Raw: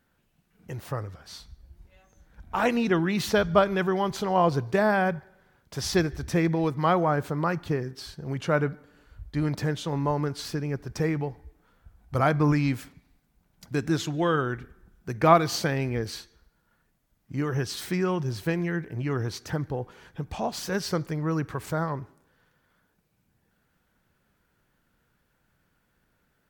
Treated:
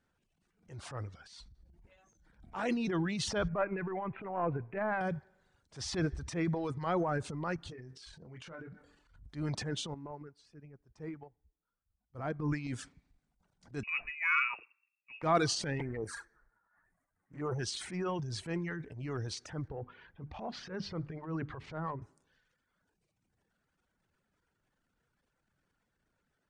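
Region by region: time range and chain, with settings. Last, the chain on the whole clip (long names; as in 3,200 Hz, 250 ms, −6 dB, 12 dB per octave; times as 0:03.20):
0:03.48–0:05.01: gain on one half-wave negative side −3 dB + Chebyshev low-pass filter 2,600 Hz, order 6 + low-shelf EQ 190 Hz −4 dB
0:07.56–0:09.23: dynamic equaliser 2,400 Hz, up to +4 dB, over −44 dBFS, Q 0.76 + downward compressor 3 to 1, threshold −41 dBFS + double-tracking delay 24 ms −5.5 dB
0:09.94–0:12.67: high-shelf EQ 2,200 Hz −10 dB + expander for the loud parts 2.5 to 1, over −33 dBFS
0:13.83–0:15.23: parametric band 700 Hz +6.5 dB 0.79 octaves + voice inversion scrambler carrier 2,700 Hz + multiband upward and downward expander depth 100%
0:15.79–0:17.59: drawn EQ curve 230 Hz 0 dB, 1,800 Hz +13 dB, 2,900 Hz −13 dB, 4,400 Hz −14 dB, 15,000 Hz +15 dB + flanger swept by the level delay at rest 11.4 ms, full sweep at −22 dBFS
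0:19.68–0:22.02: high-frequency loss of the air 290 metres + mains-hum notches 50/100/150/200/250/300 Hz
whole clip: reverb reduction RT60 0.94 s; Chebyshev low-pass filter 9,300 Hz, order 5; transient designer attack −9 dB, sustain +9 dB; level −7.5 dB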